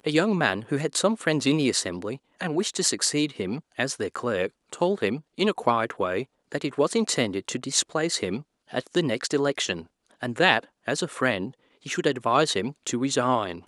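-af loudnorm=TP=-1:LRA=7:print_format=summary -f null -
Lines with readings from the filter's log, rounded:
Input Integrated:    -25.7 LUFS
Input True Peak:      -2.6 dBTP
Input LRA:             1.2 LU
Input Threshold:     -35.9 LUFS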